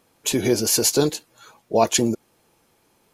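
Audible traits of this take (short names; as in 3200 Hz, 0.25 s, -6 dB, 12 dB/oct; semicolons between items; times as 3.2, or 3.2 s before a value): noise floor -64 dBFS; spectral tilt -3.5 dB/oct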